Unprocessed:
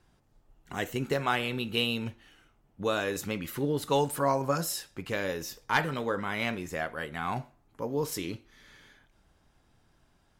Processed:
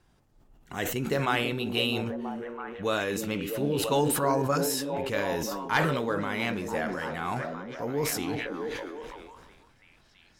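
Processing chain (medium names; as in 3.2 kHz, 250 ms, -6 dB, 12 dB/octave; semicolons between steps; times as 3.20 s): repeats whose band climbs or falls 328 ms, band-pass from 260 Hz, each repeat 0.7 oct, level -1.5 dB; decay stretcher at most 31 dB/s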